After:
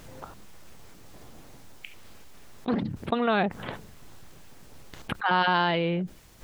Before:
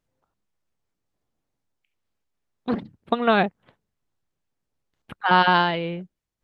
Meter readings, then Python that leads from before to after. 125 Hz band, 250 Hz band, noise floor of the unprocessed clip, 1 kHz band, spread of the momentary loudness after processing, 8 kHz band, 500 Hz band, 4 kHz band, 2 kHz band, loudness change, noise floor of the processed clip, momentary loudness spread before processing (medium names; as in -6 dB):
-0.5 dB, -2.0 dB, -82 dBFS, -5.5 dB, 23 LU, no reading, -3.5 dB, -4.0 dB, -4.5 dB, -5.0 dB, -50 dBFS, 14 LU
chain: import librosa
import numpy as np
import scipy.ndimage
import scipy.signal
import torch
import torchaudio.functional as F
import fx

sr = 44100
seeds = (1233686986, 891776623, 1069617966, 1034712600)

y = fx.env_flatten(x, sr, amount_pct=70)
y = y * librosa.db_to_amplitude(-7.5)